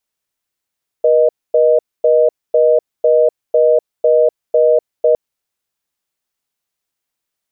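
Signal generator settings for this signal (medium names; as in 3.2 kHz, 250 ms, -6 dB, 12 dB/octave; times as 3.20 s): call progress tone reorder tone, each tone -10.5 dBFS 4.11 s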